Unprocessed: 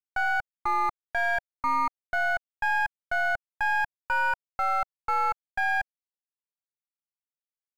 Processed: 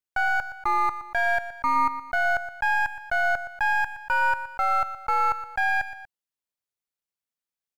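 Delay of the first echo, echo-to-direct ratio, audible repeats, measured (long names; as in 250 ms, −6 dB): 119 ms, −12.0 dB, 2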